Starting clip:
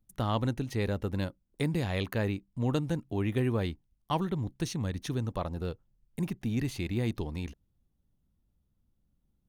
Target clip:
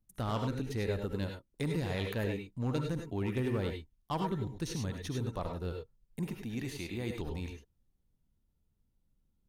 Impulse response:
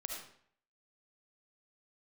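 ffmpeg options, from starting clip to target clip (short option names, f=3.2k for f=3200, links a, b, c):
-filter_complex "[0:a]asettb=1/sr,asplit=3[a][b][c];[a]atrim=end=6.394[d];[b]atrim=start=6.39:end=7.1,asetpts=PTS-STARTPTS,afade=t=in:d=0.004:c=qsin,afade=t=out:st=0.706:d=0.004:c=qsin,lowshelf=f=220:g=-7.5[e];[c]atrim=start=7.096[f];[d][e]acrossfade=d=0.004:c1=hsin:c2=qsin[g];[g][f]acrossfade=d=0.004:c1=qsin:c2=hsin,asoftclip=type=hard:threshold=-22.5dB[h];[1:a]atrim=start_sample=2205,atrim=end_sample=3528,asetrate=31752,aresample=44100[i];[h][i]afir=irnorm=-1:irlink=0,volume=-2dB"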